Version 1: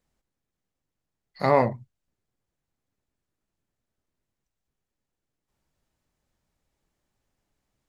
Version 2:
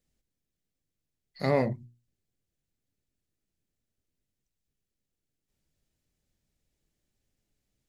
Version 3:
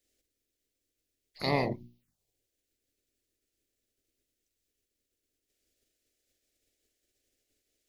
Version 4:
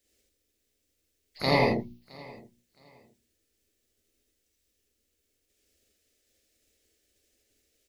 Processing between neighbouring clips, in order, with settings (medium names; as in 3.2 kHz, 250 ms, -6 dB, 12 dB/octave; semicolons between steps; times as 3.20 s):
peaking EQ 1 kHz -13 dB 1.4 oct; hum notches 60/120/180/240/300/360 Hz
spectral peaks clipped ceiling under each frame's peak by 19 dB; touch-sensitive phaser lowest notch 160 Hz, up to 1.5 kHz, full sweep at -38.5 dBFS
feedback delay 666 ms, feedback 25%, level -22.5 dB; gated-style reverb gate 100 ms rising, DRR -0.5 dB; trim +3.5 dB